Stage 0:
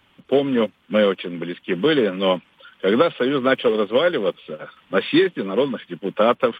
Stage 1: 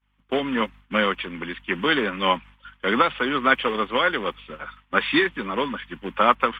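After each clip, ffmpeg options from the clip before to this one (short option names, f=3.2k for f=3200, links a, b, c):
-af "aeval=exprs='val(0)+0.00501*(sin(2*PI*50*n/s)+sin(2*PI*2*50*n/s)/2+sin(2*PI*3*50*n/s)/3+sin(2*PI*4*50*n/s)/4+sin(2*PI*5*50*n/s)/5)':c=same,equalizer=f=125:t=o:w=1:g=-6,equalizer=f=500:t=o:w=1:g=-8,equalizer=f=1k:t=o:w=1:g=8,equalizer=f=2k:t=o:w=1:g=6,agate=range=-33dB:threshold=-35dB:ratio=3:detection=peak,volume=-2.5dB"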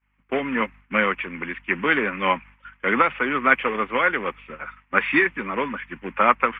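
-af "highshelf=f=2.9k:t=q:w=3:g=-7.5,volume=-1dB"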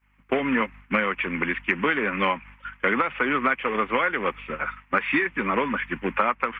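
-af "acompressor=threshold=-25dB:ratio=12,volume=6dB"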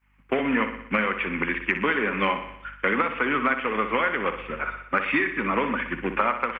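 -af "aecho=1:1:61|122|183|244|305|366|427:0.335|0.191|0.109|0.062|0.0354|0.0202|0.0115,volume=-1dB"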